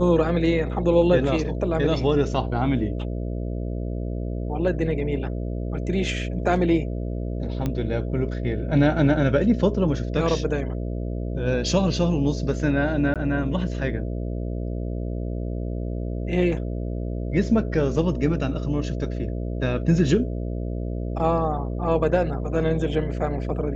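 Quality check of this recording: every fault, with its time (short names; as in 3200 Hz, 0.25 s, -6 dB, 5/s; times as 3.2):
buzz 60 Hz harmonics 11 -28 dBFS
7.66 pop -14 dBFS
13.14–13.16 gap 17 ms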